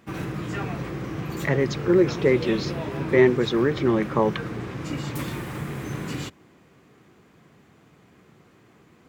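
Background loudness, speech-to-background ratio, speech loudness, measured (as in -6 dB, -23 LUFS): -31.5 LUFS, 9.0 dB, -22.5 LUFS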